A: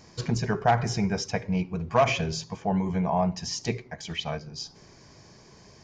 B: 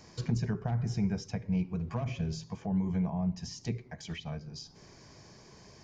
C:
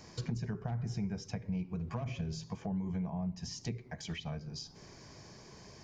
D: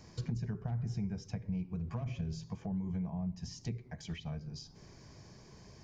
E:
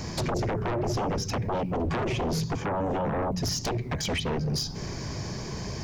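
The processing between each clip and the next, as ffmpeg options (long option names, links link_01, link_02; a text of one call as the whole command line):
ffmpeg -i in.wav -filter_complex "[0:a]acrossover=split=270[link_01][link_02];[link_02]acompressor=threshold=-42dB:ratio=4[link_03];[link_01][link_03]amix=inputs=2:normalize=0,volume=-2dB" out.wav
ffmpeg -i in.wav -af "acompressor=threshold=-37dB:ratio=2.5,volume=1dB" out.wav
ffmpeg -i in.wav -af "lowshelf=frequency=200:gain=8,volume=-5dB" out.wav
ffmpeg -i in.wav -af "aeval=exprs='0.0596*sin(PI/2*7.08*val(0)/0.0596)':channel_layout=same" out.wav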